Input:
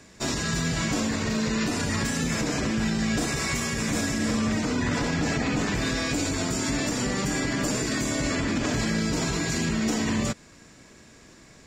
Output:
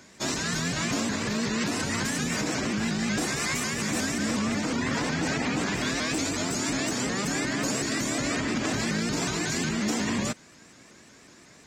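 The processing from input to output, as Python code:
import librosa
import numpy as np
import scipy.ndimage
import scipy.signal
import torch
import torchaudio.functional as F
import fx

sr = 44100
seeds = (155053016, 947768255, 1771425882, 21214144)

y = fx.highpass(x, sr, hz=180.0, slope=6)
y = fx.peak_eq(y, sr, hz=500.0, db=-2.5, octaves=0.38)
y = fx.vibrato_shape(y, sr, shape='saw_up', rate_hz=5.5, depth_cents=160.0)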